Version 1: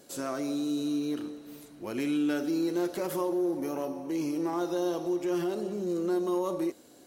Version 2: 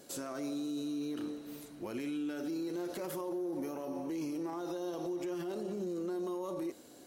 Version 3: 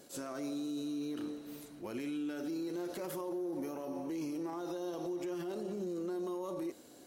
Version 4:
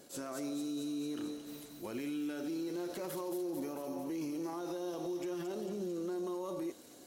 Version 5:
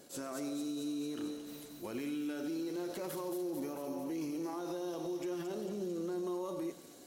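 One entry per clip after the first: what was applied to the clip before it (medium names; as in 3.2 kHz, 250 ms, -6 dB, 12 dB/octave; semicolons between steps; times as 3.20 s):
peak limiter -31 dBFS, peak gain reduction 11.5 dB
attacks held to a fixed rise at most 230 dB/s; trim -1 dB
feedback echo behind a high-pass 223 ms, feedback 68%, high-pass 3.9 kHz, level -3 dB
reverberation RT60 0.75 s, pre-delay 91 ms, DRR 13.5 dB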